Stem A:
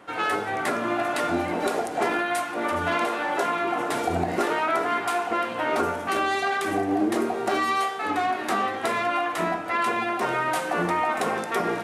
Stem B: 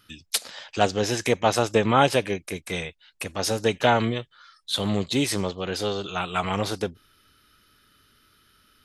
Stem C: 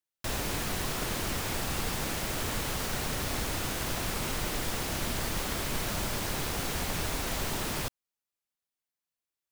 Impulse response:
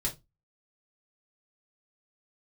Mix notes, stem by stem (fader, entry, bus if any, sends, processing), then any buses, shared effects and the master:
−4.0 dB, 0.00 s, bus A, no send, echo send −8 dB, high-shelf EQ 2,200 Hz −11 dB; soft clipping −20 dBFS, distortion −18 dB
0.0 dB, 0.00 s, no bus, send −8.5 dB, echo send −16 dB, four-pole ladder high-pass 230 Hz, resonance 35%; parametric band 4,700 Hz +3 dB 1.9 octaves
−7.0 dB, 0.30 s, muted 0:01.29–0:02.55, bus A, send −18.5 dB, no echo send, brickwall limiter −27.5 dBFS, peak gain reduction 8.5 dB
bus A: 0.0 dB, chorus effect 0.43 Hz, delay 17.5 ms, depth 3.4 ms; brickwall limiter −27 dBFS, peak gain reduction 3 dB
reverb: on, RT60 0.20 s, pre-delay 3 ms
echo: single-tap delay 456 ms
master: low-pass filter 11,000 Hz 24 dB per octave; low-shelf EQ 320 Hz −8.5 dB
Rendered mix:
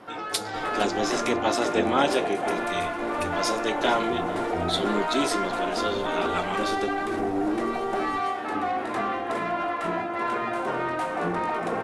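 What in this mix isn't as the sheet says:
stem A −4.0 dB → +7.5 dB
master: missing low-shelf EQ 320 Hz −8.5 dB

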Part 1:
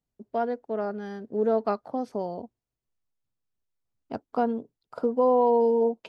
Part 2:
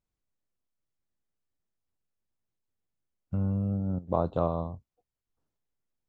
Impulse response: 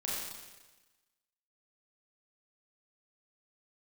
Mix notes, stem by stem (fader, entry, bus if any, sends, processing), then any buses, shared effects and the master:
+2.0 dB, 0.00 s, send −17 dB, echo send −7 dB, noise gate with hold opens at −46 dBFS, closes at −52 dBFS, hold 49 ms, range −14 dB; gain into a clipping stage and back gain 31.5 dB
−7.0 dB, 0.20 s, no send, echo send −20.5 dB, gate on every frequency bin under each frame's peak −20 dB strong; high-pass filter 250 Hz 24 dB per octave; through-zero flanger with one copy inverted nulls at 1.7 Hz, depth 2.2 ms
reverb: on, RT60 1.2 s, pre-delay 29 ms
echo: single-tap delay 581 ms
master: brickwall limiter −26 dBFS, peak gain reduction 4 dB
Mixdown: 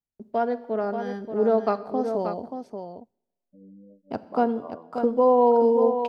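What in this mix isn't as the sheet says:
stem 1: missing gain into a clipping stage and back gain 31.5 dB
master: missing brickwall limiter −26 dBFS, peak gain reduction 4 dB

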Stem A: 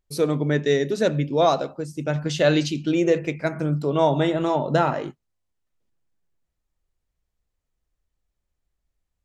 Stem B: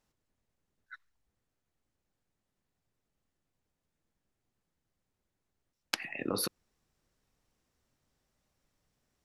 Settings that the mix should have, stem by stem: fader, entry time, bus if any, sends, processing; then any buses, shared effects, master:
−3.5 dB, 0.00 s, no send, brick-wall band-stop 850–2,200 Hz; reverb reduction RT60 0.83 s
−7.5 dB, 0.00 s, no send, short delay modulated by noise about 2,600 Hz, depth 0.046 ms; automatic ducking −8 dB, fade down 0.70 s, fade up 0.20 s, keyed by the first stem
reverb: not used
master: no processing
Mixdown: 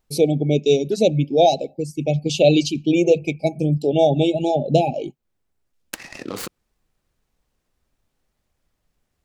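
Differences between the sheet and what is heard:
stem A −3.5 dB → +5.0 dB
stem B −7.5 dB → +3.0 dB

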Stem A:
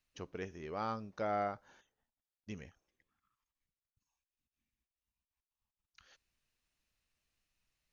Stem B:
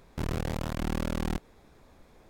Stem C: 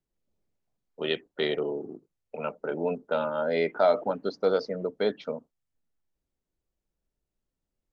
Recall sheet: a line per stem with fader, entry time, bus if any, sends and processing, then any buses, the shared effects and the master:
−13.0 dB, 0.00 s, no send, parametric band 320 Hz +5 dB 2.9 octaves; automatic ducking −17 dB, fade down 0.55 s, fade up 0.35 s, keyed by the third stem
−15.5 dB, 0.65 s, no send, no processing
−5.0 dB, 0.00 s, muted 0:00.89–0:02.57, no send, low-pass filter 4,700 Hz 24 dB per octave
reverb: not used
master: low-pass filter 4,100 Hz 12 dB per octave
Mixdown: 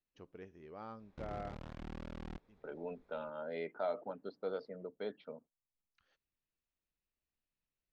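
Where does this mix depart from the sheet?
stem B: entry 0.65 s → 1.00 s
stem C −5.0 dB → −15.0 dB

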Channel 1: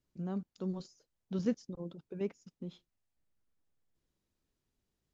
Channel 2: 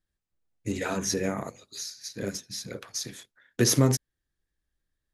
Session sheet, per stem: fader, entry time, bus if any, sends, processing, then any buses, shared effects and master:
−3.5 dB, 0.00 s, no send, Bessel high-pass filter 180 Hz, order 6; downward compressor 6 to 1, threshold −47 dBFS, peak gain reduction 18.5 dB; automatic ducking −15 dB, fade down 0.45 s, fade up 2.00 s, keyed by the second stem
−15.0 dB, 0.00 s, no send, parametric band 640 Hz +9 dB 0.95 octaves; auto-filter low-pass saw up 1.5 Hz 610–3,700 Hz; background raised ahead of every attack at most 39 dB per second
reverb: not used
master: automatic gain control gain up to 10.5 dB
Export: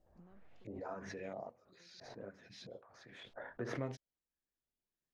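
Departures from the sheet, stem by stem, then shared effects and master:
stem 2 −15.0 dB → −22.0 dB
master: missing automatic gain control gain up to 10.5 dB

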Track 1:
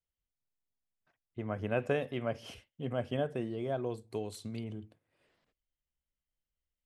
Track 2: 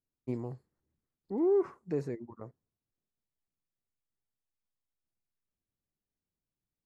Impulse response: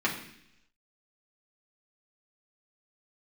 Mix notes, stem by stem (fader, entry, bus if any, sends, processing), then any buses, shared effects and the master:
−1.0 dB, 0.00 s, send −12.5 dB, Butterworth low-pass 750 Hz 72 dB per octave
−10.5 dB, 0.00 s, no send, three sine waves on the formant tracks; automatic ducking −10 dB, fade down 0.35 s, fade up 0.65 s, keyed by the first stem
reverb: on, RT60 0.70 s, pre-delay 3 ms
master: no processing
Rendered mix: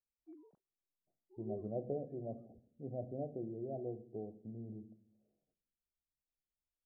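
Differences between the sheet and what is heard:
stem 1 −1.0 dB → −10.5 dB
master: extra low-pass filter 1,100 Hz

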